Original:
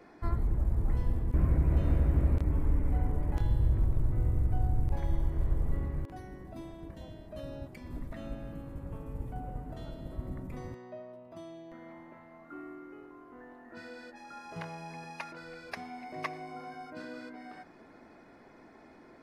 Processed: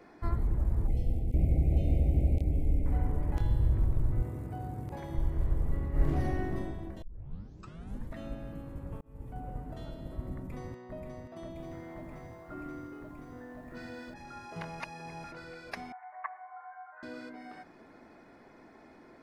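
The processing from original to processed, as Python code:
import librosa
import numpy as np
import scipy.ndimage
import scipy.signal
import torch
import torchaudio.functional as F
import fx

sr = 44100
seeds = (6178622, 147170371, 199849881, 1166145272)

y = fx.cheby1_bandstop(x, sr, low_hz=800.0, high_hz=2100.0, order=5, at=(0.87, 2.86))
y = fx.highpass(y, sr, hz=150.0, slope=12, at=(4.22, 5.15))
y = fx.reverb_throw(y, sr, start_s=5.9, length_s=0.6, rt60_s=1.7, drr_db=-11.0)
y = fx.echo_throw(y, sr, start_s=10.36, length_s=0.59, ms=530, feedback_pct=85, wet_db=-4.5)
y = fx.echo_crushed(y, sr, ms=85, feedback_pct=35, bits=11, wet_db=-7.0, at=(11.48, 14.14))
y = fx.cheby1_bandpass(y, sr, low_hz=750.0, high_hz=1800.0, order=3, at=(15.92, 17.03))
y = fx.edit(y, sr, fx.tape_start(start_s=7.02, length_s=1.12),
    fx.fade_in_span(start_s=9.01, length_s=0.61, curve='qsin'),
    fx.reverse_span(start_s=14.8, length_s=0.44), tone=tone)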